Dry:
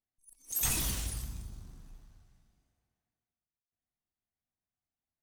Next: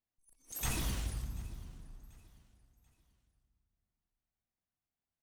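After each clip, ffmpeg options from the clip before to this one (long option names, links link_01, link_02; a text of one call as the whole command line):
ffmpeg -i in.wav -af "highshelf=frequency=4100:gain=-11,aecho=1:1:737|1474|2211:0.0794|0.0286|0.0103" out.wav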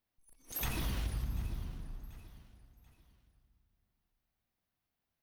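ffmpeg -i in.wav -af "acompressor=threshold=-38dB:ratio=10,equalizer=frequency=7600:width_type=o:width=0.69:gain=-12,volume=7dB" out.wav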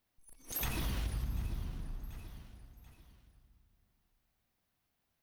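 ffmpeg -i in.wav -af "acompressor=threshold=-48dB:ratio=1.5,volume=5.5dB" out.wav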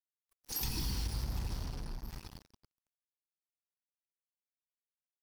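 ffmpeg -i in.wav -filter_complex "[0:a]acrossover=split=440|3000[link_01][link_02][link_03];[link_02]acompressor=threshold=-54dB:ratio=6[link_04];[link_01][link_04][link_03]amix=inputs=3:normalize=0,superequalizer=8b=0.316:9b=2:14b=3.55,acrusher=bits=6:mix=0:aa=0.5" out.wav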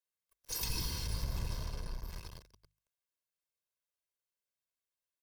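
ffmpeg -i in.wav -filter_complex "[0:a]bandreject=frequency=50:width_type=h:width=6,bandreject=frequency=100:width_type=h:width=6,bandreject=frequency=150:width_type=h:width=6,aecho=1:1:1.9:0.6,acrossover=split=400[link_01][link_02];[link_01]aeval=exprs='clip(val(0),-1,0.00841)':channel_layout=same[link_03];[link_03][link_02]amix=inputs=2:normalize=0" out.wav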